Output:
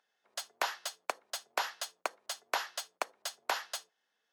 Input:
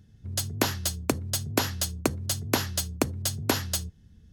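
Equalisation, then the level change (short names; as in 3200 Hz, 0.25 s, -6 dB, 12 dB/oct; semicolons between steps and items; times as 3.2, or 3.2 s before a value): HPF 690 Hz 24 dB/oct; LPF 1800 Hz 6 dB/oct; 0.0 dB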